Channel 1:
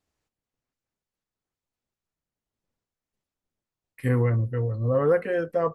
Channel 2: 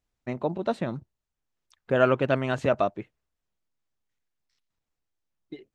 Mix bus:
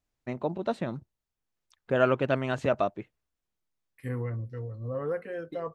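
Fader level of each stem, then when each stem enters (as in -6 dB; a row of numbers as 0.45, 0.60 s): -10.5, -2.5 dB; 0.00, 0.00 s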